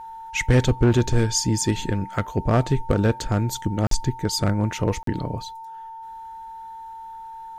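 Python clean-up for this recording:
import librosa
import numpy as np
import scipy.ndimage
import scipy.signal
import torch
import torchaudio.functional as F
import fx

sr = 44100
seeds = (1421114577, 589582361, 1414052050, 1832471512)

y = fx.fix_declip(x, sr, threshold_db=-10.5)
y = fx.notch(y, sr, hz=900.0, q=30.0)
y = fx.fix_interpolate(y, sr, at_s=(3.87, 5.03), length_ms=43.0)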